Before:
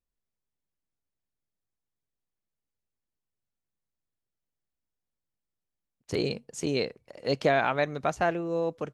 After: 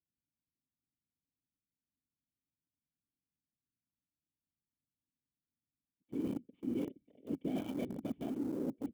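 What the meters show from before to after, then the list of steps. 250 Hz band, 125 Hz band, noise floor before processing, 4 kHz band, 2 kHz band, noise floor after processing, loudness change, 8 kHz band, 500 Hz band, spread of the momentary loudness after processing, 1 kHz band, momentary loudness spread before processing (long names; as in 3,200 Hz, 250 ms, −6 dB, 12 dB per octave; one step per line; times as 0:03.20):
−2.5 dB, −12.0 dB, below −85 dBFS, below −20 dB, −27.5 dB, below −85 dBFS, −11.0 dB, below −15 dB, −16.5 dB, 6 LU, −23.5 dB, 9 LU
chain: samples sorted by size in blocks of 8 samples
random phases in short frames
formant resonators in series i
in parallel at −6 dB: centre clipping without the shift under −40.5 dBFS
on the sum: high-pass filter 210 Hz 6 dB per octave
parametric band 2,900 Hz −12 dB 2.3 octaves
reversed playback
downward compressor, threshold −41 dBFS, peak gain reduction 13 dB
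reversed playback
level +7 dB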